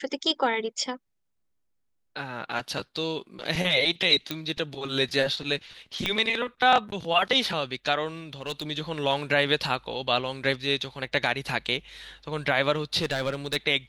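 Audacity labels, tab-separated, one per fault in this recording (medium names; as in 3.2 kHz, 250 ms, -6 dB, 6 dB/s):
4.310000	4.310000	pop -13 dBFS
6.060000	6.060000	pop -12 dBFS
8.330000	8.630000	clipped -26 dBFS
13.010000	13.570000	clipped -22 dBFS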